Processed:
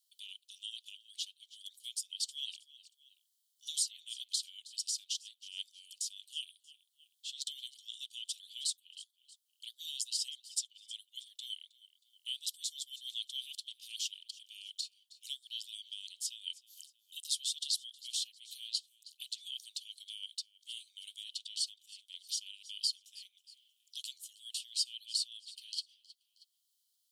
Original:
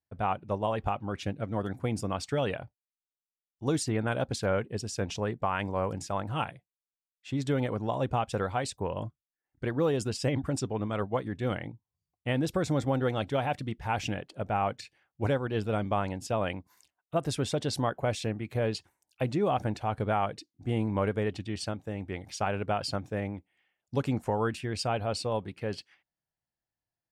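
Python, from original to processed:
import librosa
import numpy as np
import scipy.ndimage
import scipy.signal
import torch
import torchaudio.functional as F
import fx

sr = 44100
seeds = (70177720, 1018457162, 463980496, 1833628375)

p1 = scipy.signal.sosfilt(scipy.signal.cheby1(6, 3, 3000.0, 'highpass', fs=sr, output='sos'), x)
p2 = p1 + fx.echo_feedback(p1, sr, ms=316, feedback_pct=31, wet_db=-22, dry=0)
p3 = fx.band_squash(p2, sr, depth_pct=40)
y = p3 * 10.0 ** (7.5 / 20.0)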